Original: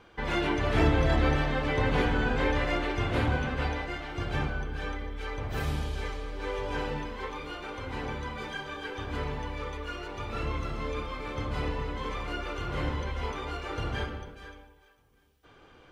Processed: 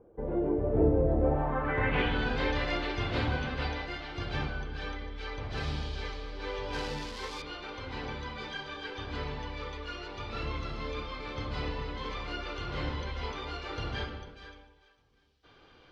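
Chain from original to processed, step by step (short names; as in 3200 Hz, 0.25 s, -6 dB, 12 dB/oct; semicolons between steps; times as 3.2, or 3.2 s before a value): 6.73–7.42 switching spikes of -29.5 dBFS; low-pass sweep 490 Hz -> 4600 Hz, 1.16–2.25; gain -3.5 dB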